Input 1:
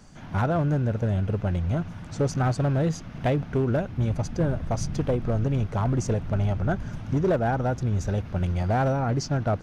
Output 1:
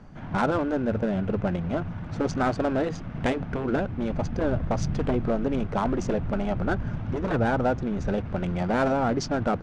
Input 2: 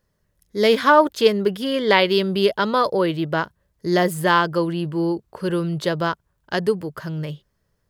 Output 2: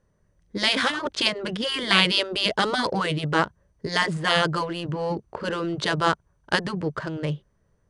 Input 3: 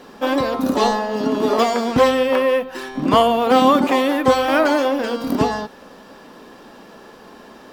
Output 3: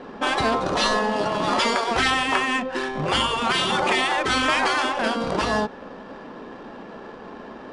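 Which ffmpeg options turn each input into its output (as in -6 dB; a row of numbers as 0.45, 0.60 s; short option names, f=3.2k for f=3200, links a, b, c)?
-af "lowpass=9.4k,afftfilt=real='re*lt(hypot(re,im),0.447)':imag='im*lt(hypot(re,im),0.447)':win_size=1024:overlap=0.75,adynamicsmooth=sensitivity=7.5:basefreq=2.1k,volume=4dB" -ar 24000 -c:a mp2 -b:a 128k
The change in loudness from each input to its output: -1.0, -4.0, -4.0 LU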